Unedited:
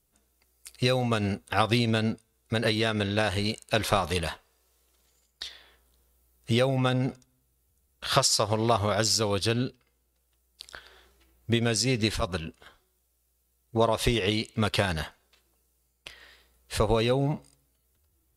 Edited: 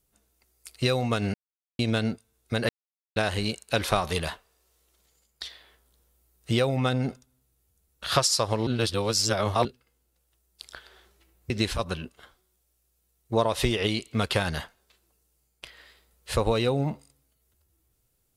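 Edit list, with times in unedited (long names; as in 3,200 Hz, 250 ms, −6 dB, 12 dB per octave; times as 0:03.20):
0:01.34–0:01.79: silence
0:02.69–0:03.16: silence
0:08.67–0:09.65: reverse
0:11.50–0:11.93: remove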